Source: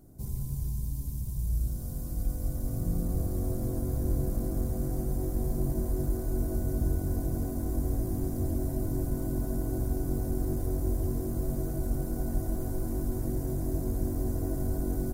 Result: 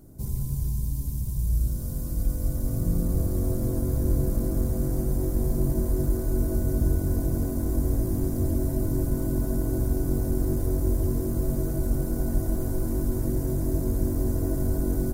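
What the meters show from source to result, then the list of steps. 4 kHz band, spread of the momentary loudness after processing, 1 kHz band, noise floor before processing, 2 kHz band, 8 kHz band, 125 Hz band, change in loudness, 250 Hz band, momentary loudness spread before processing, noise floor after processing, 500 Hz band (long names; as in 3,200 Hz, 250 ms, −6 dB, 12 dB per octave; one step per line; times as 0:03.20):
can't be measured, 3 LU, +1.5 dB, −35 dBFS, +5.0 dB, +5.0 dB, +5.0 dB, +5.0 dB, +5.0 dB, 3 LU, −30 dBFS, +5.0 dB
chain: notch filter 730 Hz, Q 13
level +5 dB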